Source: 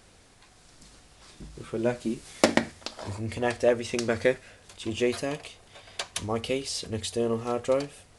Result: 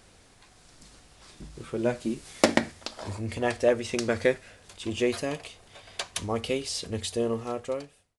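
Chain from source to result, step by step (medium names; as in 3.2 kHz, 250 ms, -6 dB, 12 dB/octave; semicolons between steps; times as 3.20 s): fade out at the end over 0.99 s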